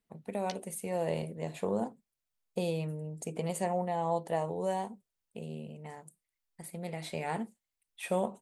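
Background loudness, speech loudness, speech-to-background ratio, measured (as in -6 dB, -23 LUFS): -50.0 LUFS, -36.0 LUFS, 14.0 dB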